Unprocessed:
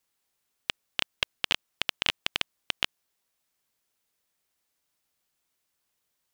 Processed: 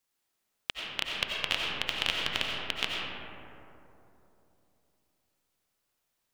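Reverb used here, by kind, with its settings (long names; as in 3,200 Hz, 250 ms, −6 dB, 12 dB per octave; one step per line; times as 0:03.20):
comb and all-pass reverb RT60 3.2 s, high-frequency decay 0.3×, pre-delay 50 ms, DRR −2.5 dB
level −3.5 dB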